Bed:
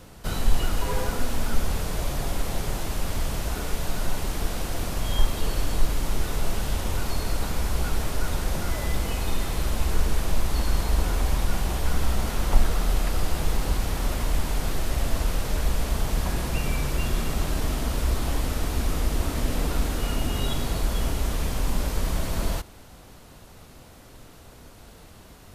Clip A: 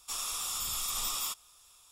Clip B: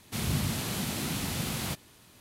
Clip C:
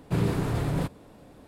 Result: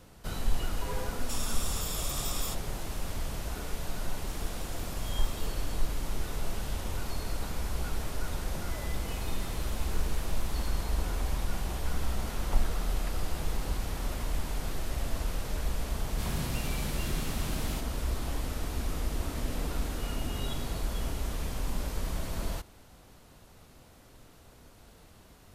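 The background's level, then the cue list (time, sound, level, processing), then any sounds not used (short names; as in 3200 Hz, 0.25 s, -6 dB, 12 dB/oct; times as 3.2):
bed -7.5 dB
1.21 add A -3 dB + three-band squash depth 40%
4.19 add A -15 dB + per-bin expansion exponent 1.5
8.95 add B -16.5 dB
16.06 add B -7 dB
not used: C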